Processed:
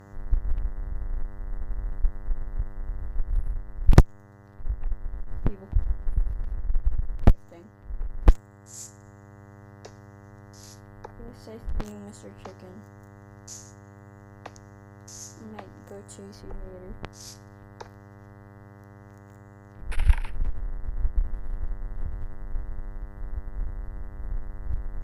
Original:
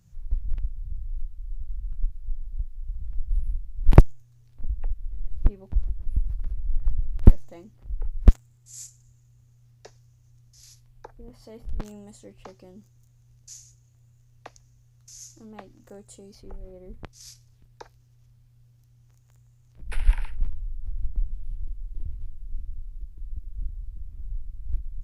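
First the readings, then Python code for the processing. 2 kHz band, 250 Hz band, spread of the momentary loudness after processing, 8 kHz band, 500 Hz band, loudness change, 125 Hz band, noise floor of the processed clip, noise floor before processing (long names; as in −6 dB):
+3.0 dB, −1.0 dB, 22 LU, can't be measured, −0.5 dB, −2.5 dB, −1.5 dB, −49 dBFS, −58 dBFS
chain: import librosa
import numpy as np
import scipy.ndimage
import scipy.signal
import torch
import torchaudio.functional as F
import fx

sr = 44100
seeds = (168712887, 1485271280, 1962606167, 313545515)

y = fx.dmg_buzz(x, sr, base_hz=100.0, harmonics=20, level_db=-50.0, tilt_db=-5, odd_only=False)
y = fx.cheby_harmonics(y, sr, harmonics=(4, 5), levels_db=(-8, -26), full_scale_db=-1.0)
y = fx.rider(y, sr, range_db=3, speed_s=2.0)
y = y * librosa.db_to_amplitude(-3.0)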